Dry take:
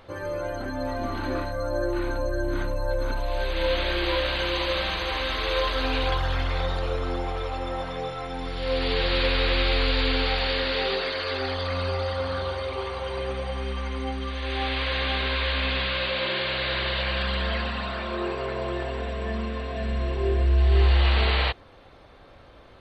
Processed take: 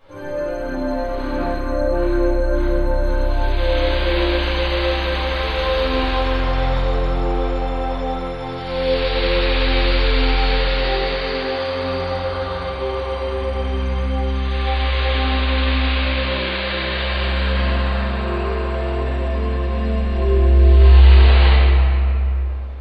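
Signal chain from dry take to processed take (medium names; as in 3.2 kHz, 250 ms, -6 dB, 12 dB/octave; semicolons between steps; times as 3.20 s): simulated room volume 130 m³, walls hard, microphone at 2.2 m; trim -10 dB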